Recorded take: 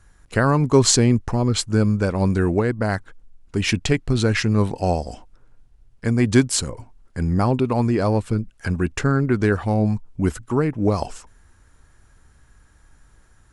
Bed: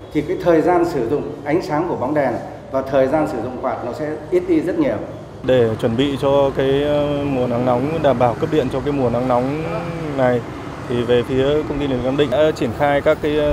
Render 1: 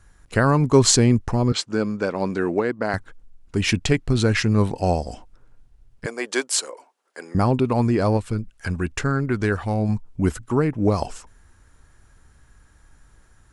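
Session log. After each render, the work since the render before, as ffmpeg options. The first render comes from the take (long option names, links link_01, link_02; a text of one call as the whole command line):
ffmpeg -i in.wav -filter_complex "[0:a]asettb=1/sr,asplit=3[link_01][link_02][link_03];[link_01]atrim=end=1.524[link_04];[link_02]atrim=start=1.52:end=2.94,asetpts=PTS-STARTPTS,afade=type=in:duration=0.004:curve=qsin,afade=type=out:start_time=1.416:duration=0.004:curve=qsin,highpass=260,lowpass=6000[link_05];[link_03]atrim=start=2.936[link_06];[link_04][link_05]acrossfade=duration=0.004:curve1=hsin:curve2=qsin[link_07];[link_07][link_06]acrossfade=duration=0.004:curve1=qsin:curve2=hsin,asettb=1/sr,asplit=3[link_08][link_09][link_10];[link_08]atrim=end=6.064[link_11];[link_09]atrim=start=6.06:end=7.35,asetpts=PTS-STARTPTS,afade=type=in:duration=0.004:curve=qsin,afade=type=out:start_time=1.286:duration=0.004:curve=qsin,highpass=frequency=420:width=0.5412,highpass=frequency=420:width=1.3066[link_12];[link_10]atrim=start=7.346[link_13];[link_11][link_12]acrossfade=duration=0.004:curve1=hsin:curve2=qsin[link_14];[link_14][link_13]acrossfade=duration=0.004:curve1=qsin:curve2=hsin,asettb=1/sr,asplit=3[link_15][link_16][link_17];[link_15]atrim=end=8.174[link_18];[link_16]atrim=start=8.17:end=9.89,asetpts=PTS-STARTPTS,afade=type=in:duration=0.004:curve=qsin,afade=type=out:start_time=1.716:duration=0.004:curve=qsin,equalizer=frequency=250:width=0.34:gain=-4[link_19];[link_17]atrim=start=9.886[link_20];[link_18][link_19]acrossfade=duration=0.004:curve1=hsin:curve2=qsin[link_21];[link_21][link_20]acrossfade=duration=0.004:curve1=qsin:curve2=hsin" out.wav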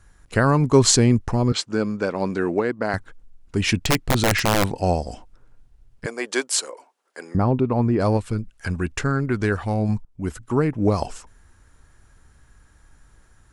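ffmpeg -i in.wav -filter_complex "[0:a]asettb=1/sr,asplit=3[link_01][link_02][link_03];[link_01]atrim=end=3.824[link_04];[link_02]atrim=start=3.82:end=4.74,asetpts=PTS-STARTPTS,afade=type=in:duration=0.004:curve=qsin,afade=type=out:start_time=0.916:duration=0.004:curve=qsin,aeval=exprs='(mod(3.55*val(0)+1,2)-1)/3.55':channel_layout=same[link_05];[link_03]atrim=start=4.736[link_06];[link_04][link_05]acrossfade=duration=0.004:curve1=hsin:curve2=qsin[link_07];[link_07][link_06]acrossfade=duration=0.004:curve1=qsin:curve2=hsin,asplit=3[link_08][link_09][link_10];[link_08]afade=type=out:start_time=7.35:duration=0.02[link_11];[link_09]lowpass=frequency=1200:poles=1,afade=type=in:start_time=7.35:duration=0.02,afade=type=out:start_time=7.99:duration=0.02[link_12];[link_10]afade=type=in:start_time=7.99:duration=0.02[link_13];[link_11][link_12][link_13]amix=inputs=3:normalize=0,asplit=2[link_14][link_15];[link_14]atrim=end=10.05,asetpts=PTS-STARTPTS,afade=type=out:start_time=10.046:duration=0.004:curve=hsin:silence=0.125893[link_16];[link_15]atrim=start=10.05,asetpts=PTS-STARTPTS,afade=type=in:duration=0.53:silence=0.125893[link_17];[link_16][link_17]concat=n=2:v=0:a=1" out.wav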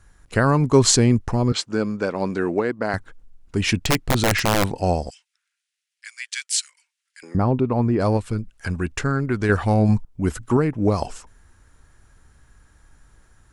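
ffmpeg -i in.wav -filter_complex "[0:a]asettb=1/sr,asplit=3[link_01][link_02][link_03];[link_01]atrim=end=5.104[link_04];[link_02]atrim=start=5.1:end=7.23,asetpts=PTS-STARTPTS,afade=type=in:duration=0.004:curve=qsin,afade=type=out:start_time=2.126:duration=0.004:curve=qsin,asuperpass=centerf=4900:order=8:qfactor=0.55[link_05];[link_03]atrim=start=7.226[link_06];[link_04][link_05]acrossfade=duration=0.004:curve1=hsin:curve2=qsin[link_07];[link_07][link_06]acrossfade=duration=0.004:curve1=qsin:curve2=hsin,asettb=1/sr,asplit=3[link_08][link_09][link_10];[link_08]atrim=end=9.494[link_11];[link_09]atrim=start=9.49:end=10.57,asetpts=PTS-STARTPTS,afade=type=in:duration=0.004:curve=qsin,afade=type=out:start_time=1.076:duration=0.004:curve=qsin,acontrast=30[link_12];[link_10]atrim=start=10.566[link_13];[link_11][link_12]acrossfade=duration=0.004:curve1=hsin:curve2=qsin[link_14];[link_14][link_13]acrossfade=duration=0.004:curve1=qsin:curve2=hsin" out.wav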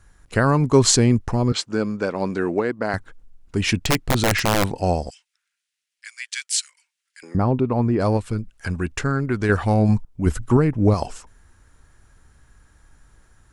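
ffmpeg -i in.wav -filter_complex "[0:a]asettb=1/sr,asplit=3[link_01][link_02][link_03];[link_01]atrim=end=10.264[link_04];[link_02]atrim=start=10.26:end=10.94,asetpts=PTS-STARTPTS,afade=type=in:duration=0.004:curve=qsin,afade=type=out:start_time=0.676:duration=0.004:curve=qsin,lowshelf=frequency=120:gain=10[link_05];[link_03]atrim=start=10.936[link_06];[link_04][link_05]acrossfade=duration=0.004:curve1=hsin:curve2=qsin[link_07];[link_07][link_06]acrossfade=duration=0.004:curve1=qsin:curve2=hsin" out.wav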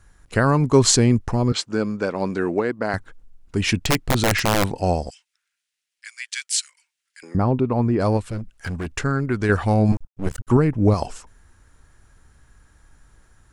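ffmpeg -i in.wav -filter_complex "[0:a]asettb=1/sr,asplit=3[link_01][link_02][link_03];[link_01]atrim=end=8.224[link_04];[link_02]atrim=start=8.22:end=8.96,asetpts=PTS-STARTPTS,afade=type=in:duration=0.004:curve=qsin,afade=type=out:start_time=0.736:duration=0.004:curve=qsin,asoftclip=type=hard:threshold=-23.5dB[link_05];[link_03]atrim=start=8.956[link_06];[link_04][link_05]acrossfade=duration=0.004:curve1=hsin:curve2=qsin[link_07];[link_07][link_06]acrossfade=duration=0.004:curve1=qsin:curve2=hsin,asettb=1/sr,asplit=3[link_08][link_09][link_10];[link_08]atrim=end=9.924[link_11];[link_09]atrim=start=9.92:end=10.5,asetpts=PTS-STARTPTS,afade=type=in:duration=0.004:curve=qsin,afade=type=out:start_time=0.576:duration=0.004:curve=qsin,aeval=exprs='max(val(0),0)':channel_layout=same[link_12];[link_10]atrim=start=10.496[link_13];[link_11][link_12]acrossfade=duration=0.004:curve1=hsin:curve2=qsin[link_14];[link_14][link_13]acrossfade=duration=0.004:curve1=qsin:curve2=hsin" out.wav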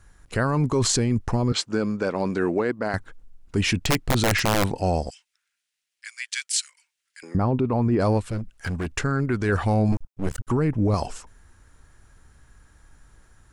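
ffmpeg -i in.wav -af "alimiter=limit=-13.5dB:level=0:latency=1:release=10" out.wav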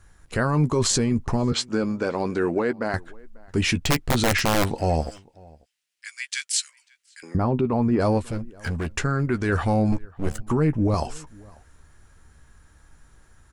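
ffmpeg -i in.wav -filter_complex "[0:a]asplit=2[link_01][link_02];[link_02]adelay=13,volume=-10dB[link_03];[link_01][link_03]amix=inputs=2:normalize=0,asplit=2[link_04][link_05];[link_05]adelay=542.3,volume=-25dB,highshelf=frequency=4000:gain=-12.2[link_06];[link_04][link_06]amix=inputs=2:normalize=0" out.wav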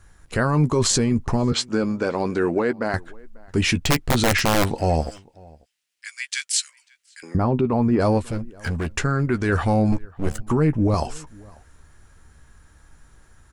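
ffmpeg -i in.wav -af "volume=2dB" out.wav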